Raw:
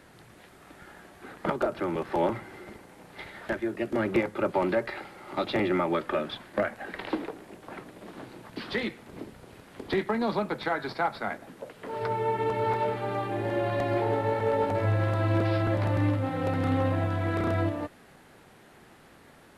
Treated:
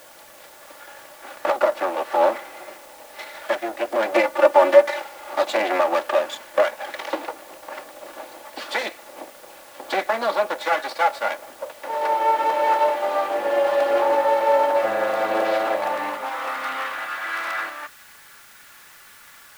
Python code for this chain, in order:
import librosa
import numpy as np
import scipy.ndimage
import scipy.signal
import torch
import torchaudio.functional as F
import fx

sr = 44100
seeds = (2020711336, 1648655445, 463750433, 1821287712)

p1 = fx.lower_of_two(x, sr, delay_ms=3.5)
p2 = fx.filter_sweep_highpass(p1, sr, from_hz=600.0, to_hz=1400.0, start_s=15.51, end_s=16.93, q=1.8)
p3 = fx.comb(p2, sr, ms=3.4, depth=0.87, at=(4.12, 5.0))
p4 = fx.quant_dither(p3, sr, seeds[0], bits=8, dither='triangular')
p5 = p3 + (p4 * librosa.db_to_amplitude(-4.5))
y = p5 * librosa.db_to_amplitude(2.5)